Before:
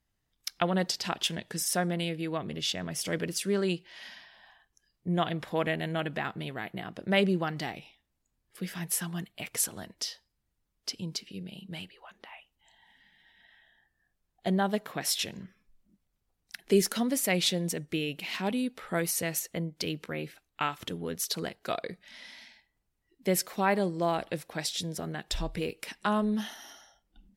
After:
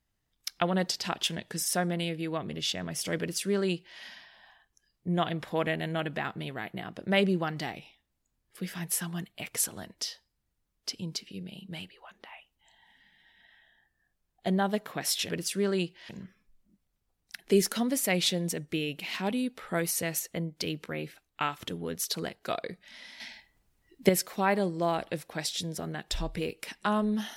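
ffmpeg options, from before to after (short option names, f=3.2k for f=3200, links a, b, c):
-filter_complex "[0:a]asplit=5[a][b][c][d][e];[a]atrim=end=15.292[f];[b]atrim=start=3.188:end=3.992[g];[c]atrim=start=15.288:end=22.402[h];[d]atrim=start=22.398:end=23.292,asetpts=PTS-STARTPTS,volume=9dB[i];[e]atrim=start=23.288[j];[f][g]acrossfade=d=0.004:c1=hsin:c2=hsin[k];[k][h]acrossfade=d=0.004:c1=hsin:c2=hsin[l];[l][i]acrossfade=d=0.004:c1=hsin:c2=hsin[m];[m][j]acrossfade=d=0.004:c1=hsin:c2=hsin"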